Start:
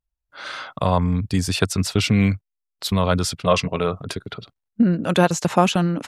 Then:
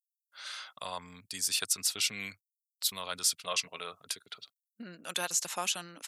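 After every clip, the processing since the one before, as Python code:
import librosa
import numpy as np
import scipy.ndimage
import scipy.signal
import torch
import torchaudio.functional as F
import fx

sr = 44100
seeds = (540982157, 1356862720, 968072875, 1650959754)

y = np.diff(x, prepend=0.0)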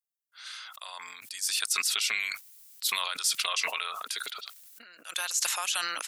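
y = scipy.signal.sosfilt(scipy.signal.butter(2, 1200.0, 'highpass', fs=sr, output='sos'), x)
y = fx.sustainer(y, sr, db_per_s=26.0)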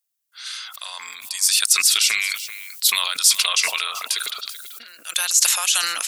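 y = fx.high_shelf(x, sr, hz=2400.0, db=10.5)
y = y + 10.0 ** (-14.5 / 20.0) * np.pad(y, (int(385 * sr / 1000.0), 0))[:len(y)]
y = y * 10.0 ** (3.0 / 20.0)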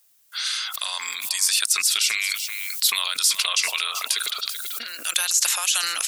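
y = fx.band_squash(x, sr, depth_pct=70)
y = y * 10.0 ** (-3.0 / 20.0)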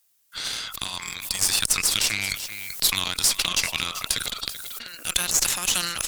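y = fx.cheby_harmonics(x, sr, harmonics=(7, 8), levels_db=(-24, -23), full_scale_db=-4.0)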